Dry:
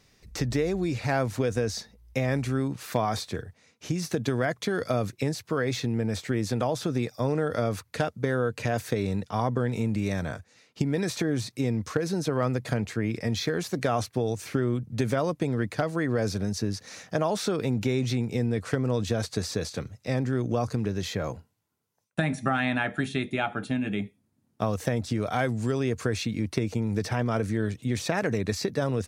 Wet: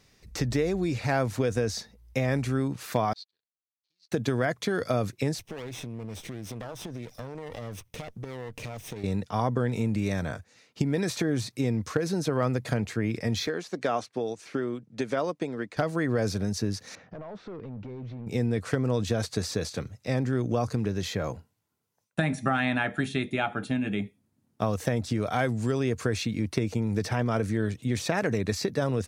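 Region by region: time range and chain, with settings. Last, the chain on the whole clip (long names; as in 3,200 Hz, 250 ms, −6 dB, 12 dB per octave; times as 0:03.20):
0:03.13–0:04.12: slack as between gear wheels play −32 dBFS + resonant band-pass 4,300 Hz, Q 8 + expander for the loud parts 2.5 to 1, over −54 dBFS
0:05.39–0:09.04: lower of the sound and its delayed copy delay 0.34 ms + downward compressor 5 to 1, threshold −35 dBFS
0:13.47–0:15.77: band-pass filter 230–7,400 Hz + expander for the loud parts, over −36 dBFS
0:16.95–0:18.27: downward compressor 2 to 1, threshold −38 dBFS + hard clipping −34 dBFS + head-to-tape spacing loss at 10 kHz 40 dB
whole clip: no processing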